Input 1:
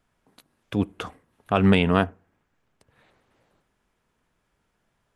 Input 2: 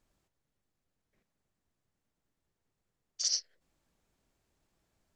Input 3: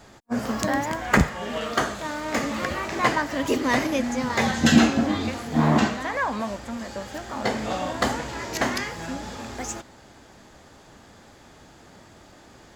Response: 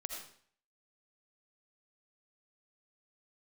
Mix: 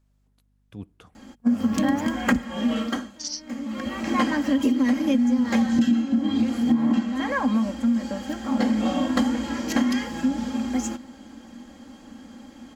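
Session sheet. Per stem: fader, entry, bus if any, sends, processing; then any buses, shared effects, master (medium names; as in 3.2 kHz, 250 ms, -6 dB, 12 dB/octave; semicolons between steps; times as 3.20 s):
-19.0 dB, 0.00 s, no send, tone controls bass +8 dB, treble +5 dB
-1.5 dB, 0.00 s, no send, hum 50 Hz, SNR 19 dB
-3.0 dB, 1.15 s, no send, band-stop 3.6 kHz, Q 11; comb 3.7 ms, depth 62%; small resonant body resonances 240/3200 Hz, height 16 dB, ringing for 55 ms; auto duck -19 dB, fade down 0.40 s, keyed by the second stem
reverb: none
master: compression 16:1, threshold -17 dBFS, peak gain reduction 20.5 dB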